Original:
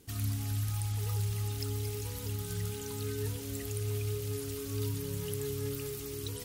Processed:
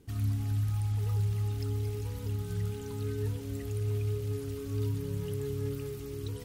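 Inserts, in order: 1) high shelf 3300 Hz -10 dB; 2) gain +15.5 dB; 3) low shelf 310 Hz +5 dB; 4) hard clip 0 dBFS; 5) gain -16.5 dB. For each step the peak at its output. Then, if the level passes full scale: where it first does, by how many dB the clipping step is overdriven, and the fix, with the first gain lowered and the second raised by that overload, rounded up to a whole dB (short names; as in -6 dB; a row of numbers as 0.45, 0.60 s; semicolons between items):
-23.5, -8.0, -5.5, -5.5, -22.0 dBFS; no overload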